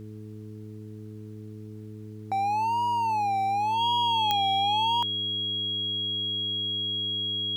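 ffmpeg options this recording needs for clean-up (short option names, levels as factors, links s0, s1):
-af "adeclick=t=4,bandreject=f=107.1:t=h:w=4,bandreject=f=214.2:t=h:w=4,bandreject=f=321.3:t=h:w=4,bandreject=f=428.4:t=h:w=4,bandreject=f=3300:w=30,agate=range=0.0891:threshold=0.0224"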